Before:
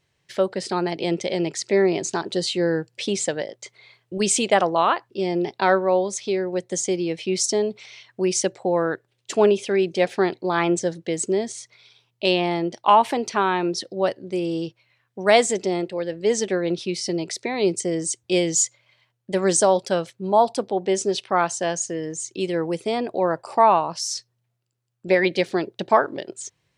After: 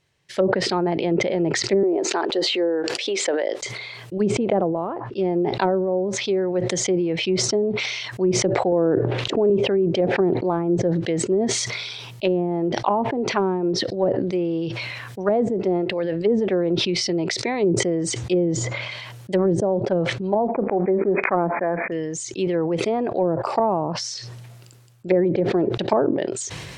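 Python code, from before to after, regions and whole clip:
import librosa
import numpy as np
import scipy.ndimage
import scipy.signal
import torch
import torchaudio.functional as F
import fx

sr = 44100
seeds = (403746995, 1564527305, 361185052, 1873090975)

y = fx.chain(x, sr, fx.highpass(hz=320.0, slope=24),
    fx.pre_swell(db_per_s=78.0), at=(1.83, 3.62))
y = fx.chain(y, sr, fx.highpass(hz=52.0, slope=12),
    fx.low_shelf(hz=170.0, db=-11.0),
    fx.env_flatten(amount_pct=100), at=(8.72, 9.5))
y = fx.chain(y, sr, fx.law_mismatch(coded='A'),
    fx.brickwall_bandpass(low_hz=160.0, high_hz=2500.0), at=(20.47, 21.92))
y = fx.env_lowpass_down(y, sr, base_hz=420.0, full_db=-16.5)
y = fx.sustainer(y, sr, db_per_s=28.0)
y = F.gain(torch.from_numpy(y), 1.5).numpy()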